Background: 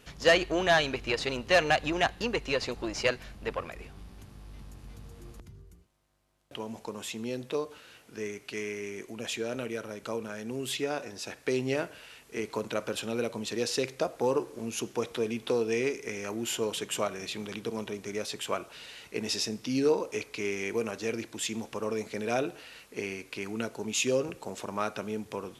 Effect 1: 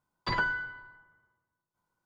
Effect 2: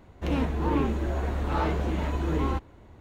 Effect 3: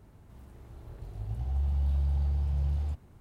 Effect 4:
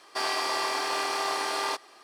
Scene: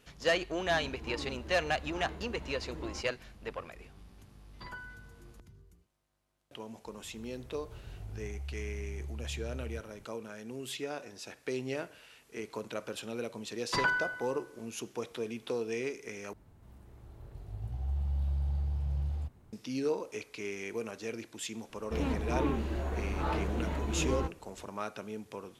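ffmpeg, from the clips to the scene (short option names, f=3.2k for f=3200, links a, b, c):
-filter_complex "[2:a]asplit=2[a][b];[1:a]asplit=2[c][d];[3:a]asplit=2[e][f];[0:a]volume=-6.5dB[g];[e]acompressor=threshold=-35dB:ratio=6:attack=3.2:release=140:knee=1:detection=peak[h];[d]lowshelf=f=110:g=-10.5[i];[g]asplit=2[j][k];[j]atrim=end=16.334[l];[f]atrim=end=3.2,asetpts=PTS-STARTPTS,volume=-4dB[m];[k]atrim=start=19.526[n];[a]atrim=end=3,asetpts=PTS-STARTPTS,volume=-17.5dB,afade=t=in:d=0.004:c=hsin,afade=t=out:st=2.996:d=0.004:c=hsin,adelay=430[o];[c]atrim=end=2.05,asetpts=PTS-STARTPTS,volume=-16.5dB,afade=t=in:d=0.004:c=hsin,afade=t=out:st=2.046:d=0.004:c=hsin,adelay=4340[p];[h]atrim=end=3.2,asetpts=PTS-STARTPTS,volume=-3dB,afade=t=in:d=0.004:c=hsin,afade=t=out:st=3.196:d=0.004:c=hsin,adelay=6850[q];[i]atrim=end=2.05,asetpts=PTS-STARTPTS,afade=t=in:d=0.004:c=hsin,afade=t=out:st=2.046:d=0.004:c=hsin,adelay=13460[r];[b]atrim=end=3,asetpts=PTS-STARTPTS,volume=-6dB,afade=t=in:d=0.004:c=hsin,afade=t=out:st=2.996:d=0.004:c=hsin,adelay=21690[s];[l][m]acrossfade=d=0.004:c1=hsin:c2=hsin[t];[t][n]acrossfade=d=0.004:c1=hsin:c2=hsin[u];[u][o][p][q][r][s]amix=inputs=6:normalize=0"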